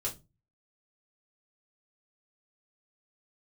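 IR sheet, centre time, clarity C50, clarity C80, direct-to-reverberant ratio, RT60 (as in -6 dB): 16 ms, 14.5 dB, 21.5 dB, -5.0 dB, 0.25 s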